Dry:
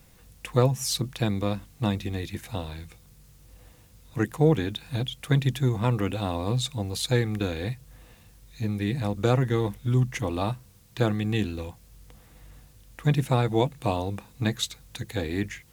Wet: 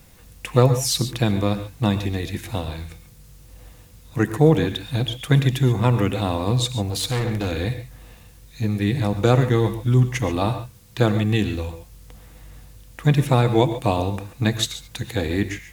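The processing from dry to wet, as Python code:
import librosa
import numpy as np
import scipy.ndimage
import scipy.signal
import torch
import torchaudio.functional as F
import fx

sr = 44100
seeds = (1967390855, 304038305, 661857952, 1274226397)

y = fx.rev_gated(x, sr, seeds[0], gate_ms=160, shape='rising', drr_db=10.0)
y = fx.clip_hard(y, sr, threshold_db=-25.5, at=(6.88, 7.52))
y = y * librosa.db_to_amplitude(5.5)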